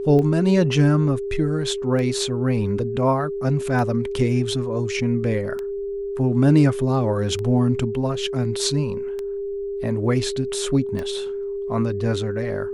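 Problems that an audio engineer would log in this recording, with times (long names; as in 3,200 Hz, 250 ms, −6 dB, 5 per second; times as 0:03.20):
scratch tick 33 1/3 rpm −17 dBFS
whistle 400 Hz −25 dBFS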